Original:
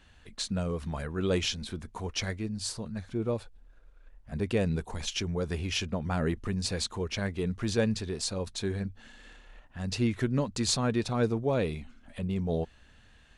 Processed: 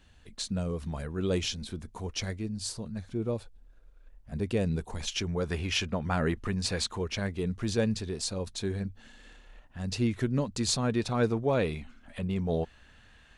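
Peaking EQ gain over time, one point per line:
peaking EQ 1.5 kHz 2.4 oct
4.67 s -4.5 dB
5.52 s +4 dB
6.80 s +4 dB
7.37 s -2.5 dB
10.79 s -2.5 dB
11.28 s +3.5 dB

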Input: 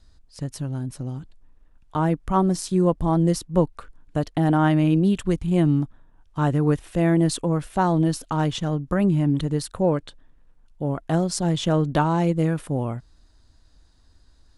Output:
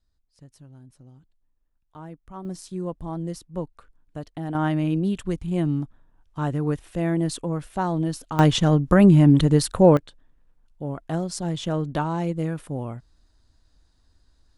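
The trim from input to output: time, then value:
-18.5 dB
from 2.45 s -11 dB
from 4.55 s -4.5 dB
from 8.39 s +6.5 dB
from 9.97 s -5 dB

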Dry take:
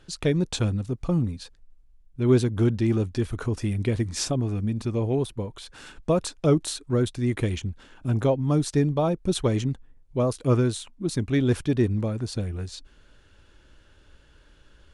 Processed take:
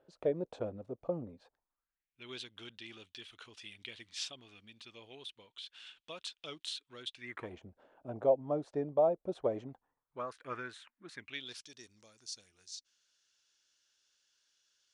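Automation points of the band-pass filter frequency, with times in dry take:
band-pass filter, Q 3.3
1.36 s 580 Hz
2.29 s 3.2 kHz
7.13 s 3.2 kHz
7.55 s 630 Hz
9.60 s 630 Hz
10.35 s 1.7 kHz
11.12 s 1.7 kHz
11.65 s 5.8 kHz

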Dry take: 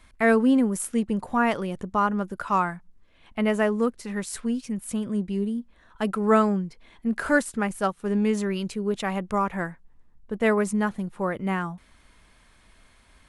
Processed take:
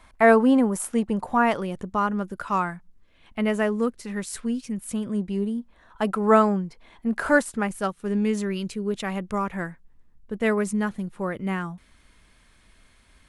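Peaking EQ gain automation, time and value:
peaking EQ 830 Hz 1.3 oct
0.85 s +9 dB
2.04 s -2 dB
4.83 s -2 dB
5.42 s +5 dB
7.40 s +5 dB
7.90 s -4 dB

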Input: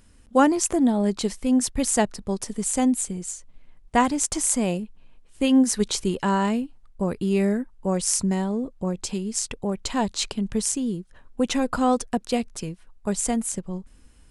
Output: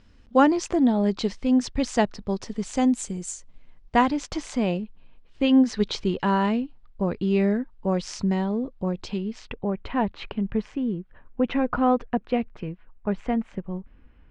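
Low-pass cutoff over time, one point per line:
low-pass 24 dB/octave
2.67 s 5.2 kHz
3.29 s 8.6 kHz
4.17 s 4.5 kHz
9.00 s 4.5 kHz
9.73 s 2.6 kHz

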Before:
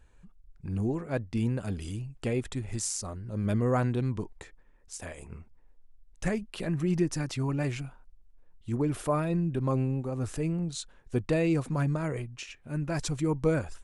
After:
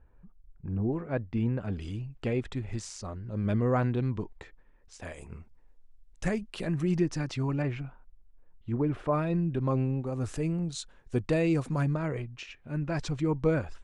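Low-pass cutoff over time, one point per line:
1.3 kHz
from 0.93 s 2.4 kHz
from 1.73 s 4 kHz
from 5.05 s 9 kHz
from 6.98 s 5.3 kHz
from 7.62 s 2.3 kHz
from 9.13 s 4.6 kHz
from 10.07 s 8.8 kHz
from 11.87 s 4.3 kHz

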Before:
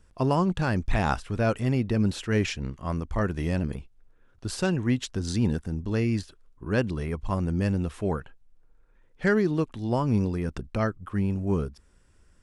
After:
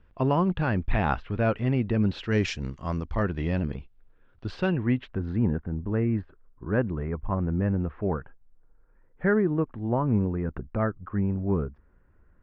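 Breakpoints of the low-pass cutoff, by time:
low-pass 24 dB/octave
2.02 s 3.2 kHz
2.62 s 7.7 kHz
3.32 s 3.8 kHz
4.47 s 3.8 kHz
5.42 s 1.8 kHz

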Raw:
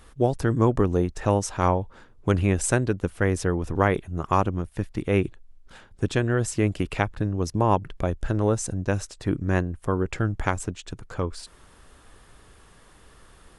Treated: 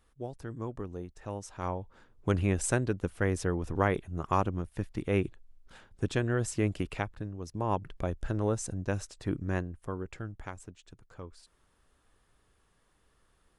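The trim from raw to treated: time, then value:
1.26 s -17.5 dB
2.29 s -6 dB
6.77 s -6 dB
7.41 s -14.5 dB
7.84 s -7 dB
9.38 s -7 dB
10.48 s -17 dB

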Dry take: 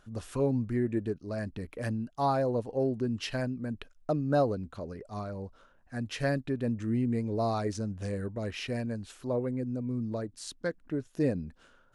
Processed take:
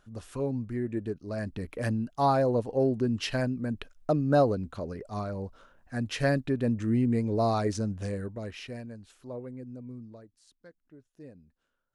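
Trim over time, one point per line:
0.77 s -3 dB
1.74 s +3.5 dB
7.88 s +3.5 dB
8.93 s -8.5 dB
9.90 s -8.5 dB
10.42 s -20 dB

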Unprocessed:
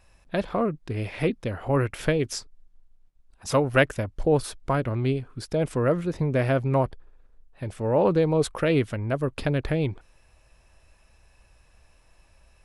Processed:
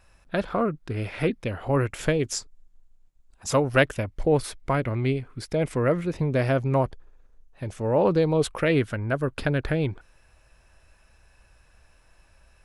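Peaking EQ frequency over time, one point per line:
peaking EQ +7.5 dB 0.32 oct
1.23 s 1.4 kHz
1.89 s 7.1 kHz
3.60 s 7.1 kHz
4.08 s 2.1 kHz
6.06 s 2.1 kHz
6.56 s 6.4 kHz
8.00 s 6.4 kHz
8.84 s 1.5 kHz

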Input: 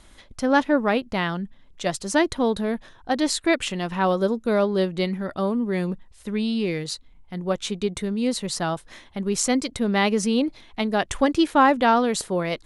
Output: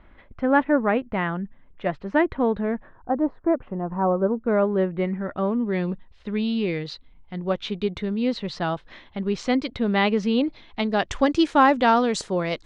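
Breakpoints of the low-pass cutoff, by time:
low-pass 24 dB/octave
2.66 s 2.3 kHz
3.20 s 1.1 kHz
4.03 s 1.1 kHz
4.60 s 2.1 kHz
5.13 s 2.1 kHz
5.85 s 4 kHz
10.41 s 4 kHz
11.42 s 7.2 kHz

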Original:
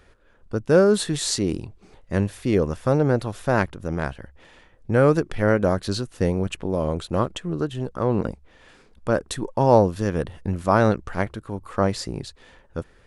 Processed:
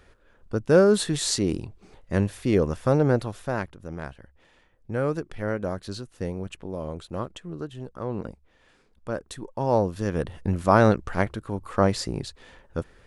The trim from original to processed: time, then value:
3.15 s -1 dB
3.62 s -9 dB
9.50 s -9 dB
10.43 s +0.5 dB

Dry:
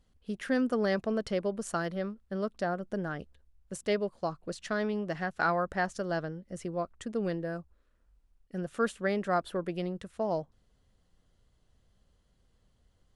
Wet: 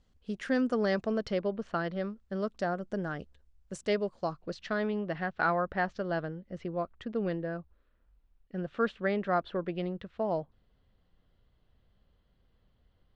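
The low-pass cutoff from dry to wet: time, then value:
low-pass 24 dB/octave
1.08 s 7.7 kHz
1.68 s 3.4 kHz
2.23 s 7.9 kHz
4.05 s 7.9 kHz
4.87 s 4 kHz

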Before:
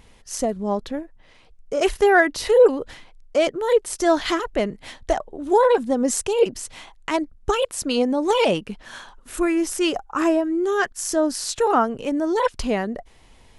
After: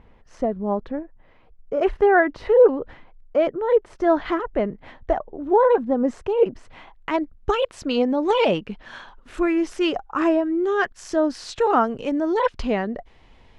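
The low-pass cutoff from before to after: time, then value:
6.54 s 1.6 kHz
7.50 s 3.4 kHz
11.42 s 3.4 kHz
11.96 s 5.7 kHz
12.30 s 3.5 kHz

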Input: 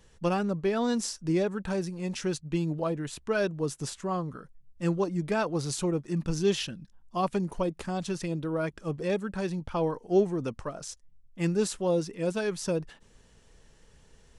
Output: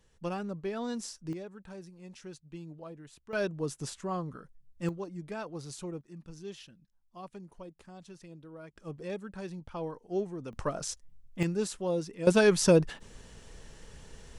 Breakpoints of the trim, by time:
-8 dB
from 1.33 s -15.5 dB
from 3.33 s -3.5 dB
from 4.89 s -11 dB
from 6.01 s -17.5 dB
from 8.76 s -9 dB
from 10.53 s +3.5 dB
from 11.43 s -4.5 dB
from 12.27 s +8 dB

